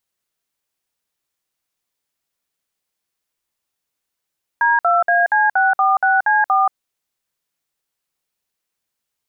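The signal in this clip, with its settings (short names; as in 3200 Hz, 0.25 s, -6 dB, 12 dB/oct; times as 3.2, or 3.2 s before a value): DTMF "D2AC646C4", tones 0.18 s, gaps 56 ms, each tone -14.5 dBFS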